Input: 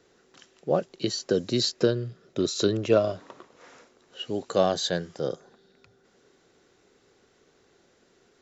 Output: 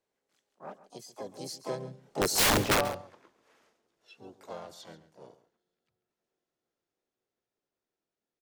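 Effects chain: Doppler pass-by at 2.46 s, 27 m/s, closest 1.9 m; harmony voices +4 st -4 dB, +7 st -8 dB, +12 st -7 dB; integer overflow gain 24 dB; on a send: delay 137 ms -15.5 dB; on the sum: trim +6 dB

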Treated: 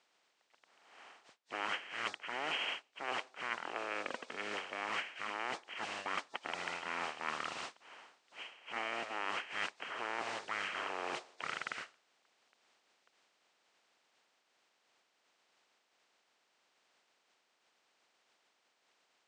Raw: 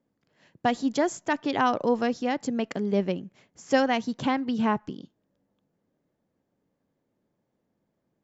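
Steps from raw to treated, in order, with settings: spectral contrast reduction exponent 0.33; speed mistake 78 rpm record played at 33 rpm; reverse; compression 16:1, threshold -37 dBFS, peak gain reduction 23.5 dB; reverse; band-pass 530–4800 Hz; trim +4.5 dB

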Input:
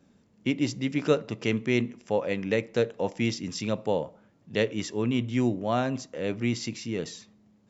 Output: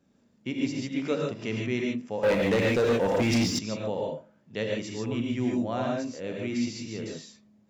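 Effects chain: gated-style reverb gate 170 ms rising, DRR -1 dB; 2.23–3.59 s: waveshaping leveller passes 3; trim -6.5 dB

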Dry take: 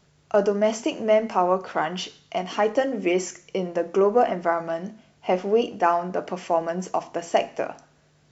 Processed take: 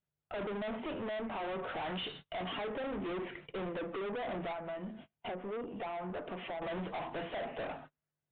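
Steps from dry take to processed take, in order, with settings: coarse spectral quantiser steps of 15 dB; gate -48 dBFS, range -34 dB; low-pass that closes with the level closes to 950 Hz, closed at -17 dBFS; 4.52–6.62 s: compression 4:1, threshold -38 dBFS, peak gain reduction 18.5 dB; peak limiter -15.5 dBFS, peak gain reduction 7 dB; gain riding within 4 dB 0.5 s; valve stage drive 39 dB, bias 0.25; resampled via 8 kHz; trim +2.5 dB

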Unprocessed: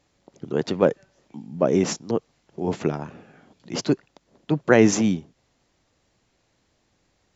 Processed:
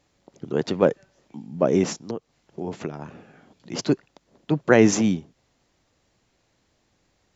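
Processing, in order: 1.84–3.79 s: compression 6:1, threshold -27 dBFS, peak gain reduction 10 dB

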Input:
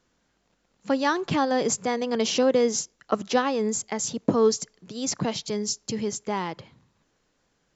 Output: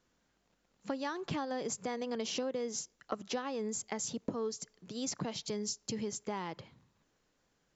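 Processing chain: compression 6:1, threshold -28 dBFS, peak gain reduction 12 dB; trim -5.5 dB

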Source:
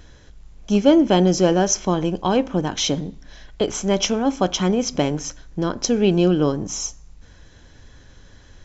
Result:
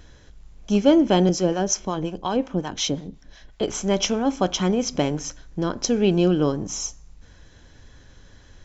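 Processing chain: 1.29–3.63 s: harmonic tremolo 5.5 Hz, depth 70%, crossover 610 Hz; trim -2 dB

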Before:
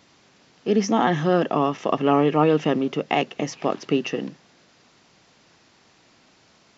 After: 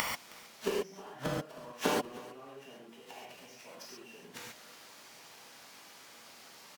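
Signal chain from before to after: jump at every zero crossing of -23.5 dBFS; high-pass 480 Hz 6 dB/octave; gain riding within 4 dB 0.5 s; formant-preserving pitch shift -2.5 st; inverted gate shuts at -19 dBFS, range -38 dB; delay 316 ms -20 dB; gated-style reverb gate 160 ms flat, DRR -6 dB; trim +4.5 dB

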